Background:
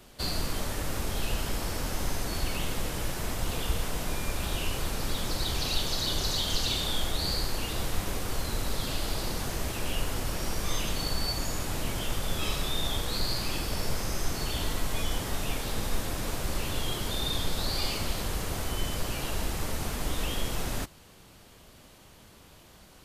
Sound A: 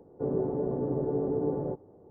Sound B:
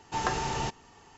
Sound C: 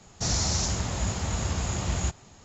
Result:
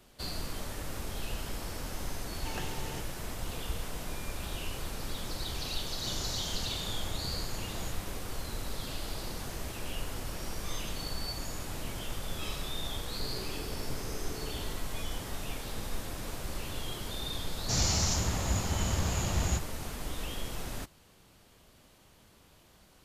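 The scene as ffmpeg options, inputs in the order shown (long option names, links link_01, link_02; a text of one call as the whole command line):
ffmpeg -i bed.wav -i cue0.wav -i cue1.wav -i cue2.wav -filter_complex "[3:a]asplit=2[link_01][link_02];[0:a]volume=-6.5dB[link_03];[2:a]equalizer=frequency=1100:width_type=o:width=0.49:gain=-13[link_04];[link_01]highpass=frequency=76:width=0.5412,highpass=frequency=76:width=1.3066[link_05];[link_04]atrim=end=1.16,asetpts=PTS-STARTPTS,volume=-9.5dB,afade=type=in:duration=0.004:curve=hsin,afade=type=out:start_time=1.156:duration=0.004:curve=hsin,adelay=2310[link_06];[link_05]atrim=end=2.44,asetpts=PTS-STARTPTS,volume=-13.5dB,afade=type=in:duration=0.004:curve=hsin,afade=type=out:start_time=2.436:duration=0.004:curve=hsin,adelay=5820[link_07];[1:a]atrim=end=2.1,asetpts=PTS-STARTPTS,volume=-16.5dB,afade=type=in:duration=0.004:curve=hsin,afade=type=out:start_time=2.096:duration=0.004:curve=hsin,adelay=573300S[link_08];[link_02]atrim=end=2.44,asetpts=PTS-STARTPTS,volume=-2.5dB,afade=type=in:duration=0.004:curve=hsin,afade=type=out:start_time=2.436:duration=0.004:curve=hsin,adelay=770868S[link_09];[link_03][link_06][link_07][link_08][link_09]amix=inputs=5:normalize=0" out.wav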